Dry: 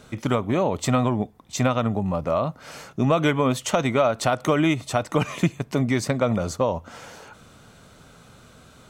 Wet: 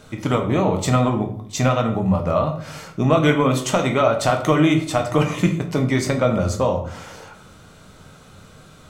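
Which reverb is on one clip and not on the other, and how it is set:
rectangular room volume 84 cubic metres, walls mixed, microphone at 0.54 metres
level +1.5 dB

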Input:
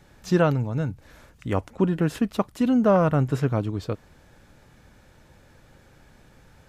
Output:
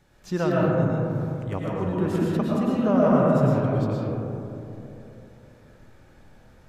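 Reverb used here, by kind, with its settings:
comb and all-pass reverb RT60 3 s, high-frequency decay 0.25×, pre-delay 75 ms, DRR −5.5 dB
level −7 dB

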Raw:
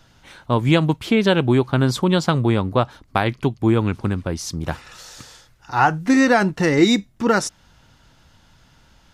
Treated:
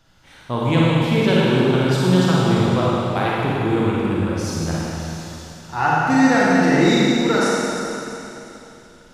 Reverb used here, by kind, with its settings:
four-comb reverb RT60 3.1 s, DRR −6.5 dB
level −6 dB

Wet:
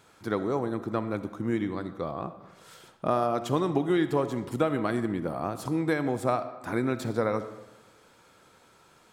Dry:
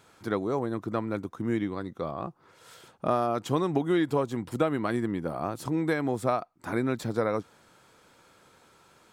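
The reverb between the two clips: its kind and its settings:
comb and all-pass reverb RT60 1.1 s, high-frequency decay 0.7×, pre-delay 20 ms, DRR 11 dB

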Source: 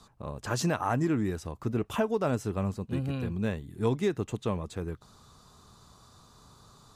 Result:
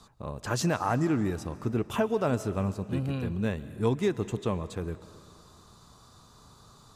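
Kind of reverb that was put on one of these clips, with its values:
comb and all-pass reverb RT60 2.4 s, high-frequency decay 0.9×, pre-delay 95 ms, DRR 15.5 dB
level +1 dB

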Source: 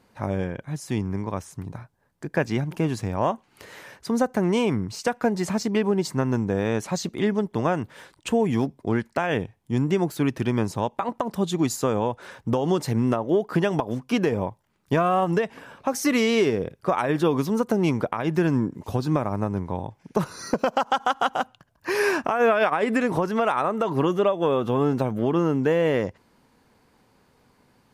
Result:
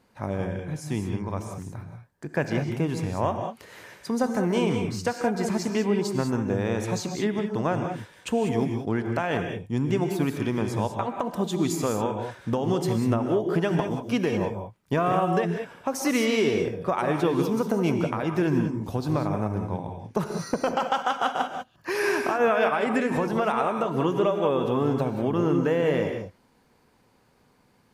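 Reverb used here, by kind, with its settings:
reverb whose tail is shaped and stops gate 220 ms rising, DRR 4.5 dB
level −3 dB

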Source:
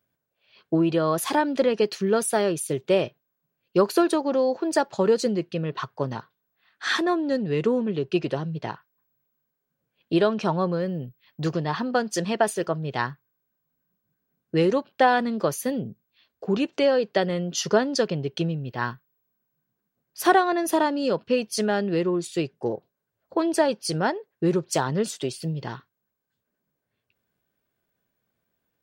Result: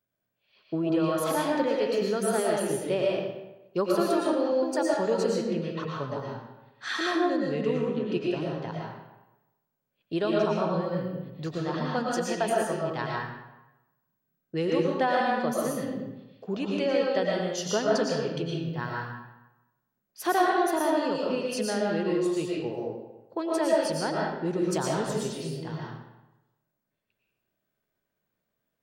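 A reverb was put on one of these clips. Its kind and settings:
comb and all-pass reverb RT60 1 s, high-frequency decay 0.75×, pre-delay 75 ms, DRR −3.5 dB
level −8 dB

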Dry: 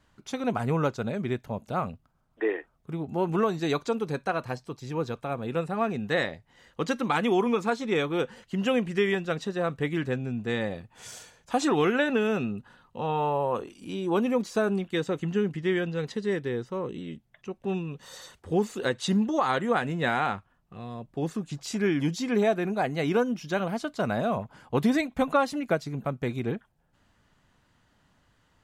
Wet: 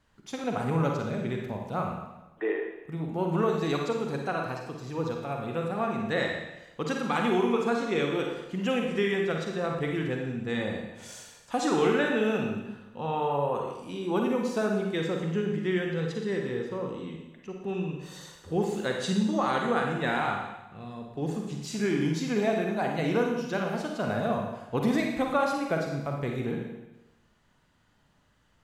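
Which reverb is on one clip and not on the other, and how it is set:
four-comb reverb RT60 1 s, DRR 1 dB
level −3.5 dB

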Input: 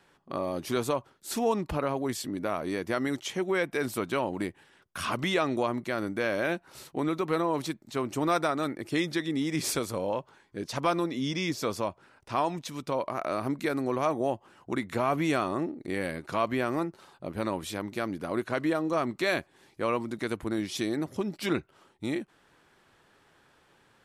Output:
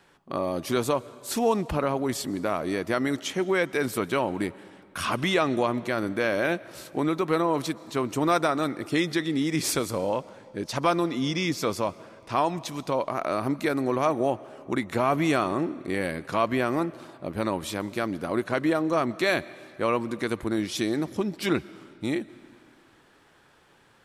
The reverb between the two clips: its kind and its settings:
comb and all-pass reverb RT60 2.3 s, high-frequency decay 0.85×, pre-delay 90 ms, DRR 19.5 dB
level +3.5 dB

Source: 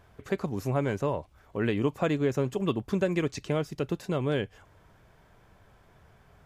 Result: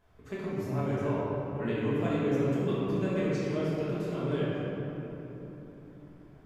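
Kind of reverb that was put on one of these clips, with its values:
rectangular room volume 220 cubic metres, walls hard, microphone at 1.4 metres
level −12.5 dB

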